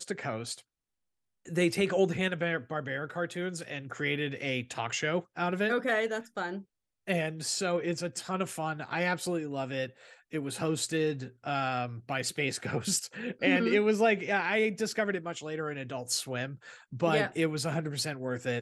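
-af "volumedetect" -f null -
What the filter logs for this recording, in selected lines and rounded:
mean_volume: -31.8 dB
max_volume: -12.8 dB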